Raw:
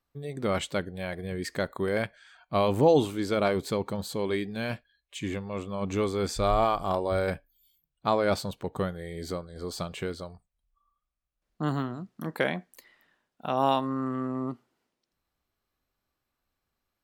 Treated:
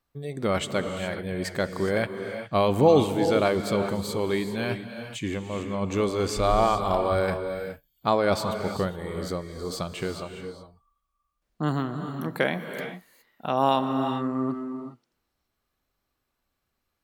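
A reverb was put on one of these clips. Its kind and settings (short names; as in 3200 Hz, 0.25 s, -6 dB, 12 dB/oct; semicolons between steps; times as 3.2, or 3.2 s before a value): non-linear reverb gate 0.44 s rising, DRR 7 dB; gain +2.5 dB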